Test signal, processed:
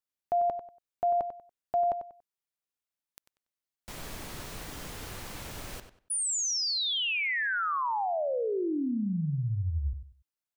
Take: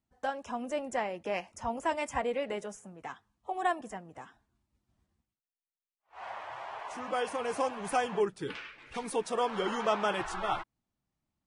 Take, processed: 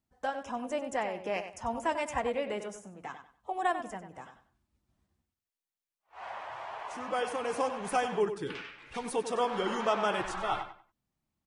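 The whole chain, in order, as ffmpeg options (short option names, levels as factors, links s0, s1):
-filter_complex "[0:a]asplit=2[s0][s1];[s1]adelay=95,lowpass=f=4600:p=1,volume=0.335,asplit=2[s2][s3];[s3]adelay=95,lowpass=f=4600:p=1,volume=0.26,asplit=2[s4][s5];[s5]adelay=95,lowpass=f=4600:p=1,volume=0.26[s6];[s0][s2][s4][s6]amix=inputs=4:normalize=0"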